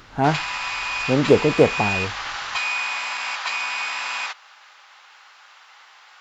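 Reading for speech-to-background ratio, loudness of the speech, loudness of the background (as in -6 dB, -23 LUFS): 4.5 dB, -20.5 LUFS, -25.0 LUFS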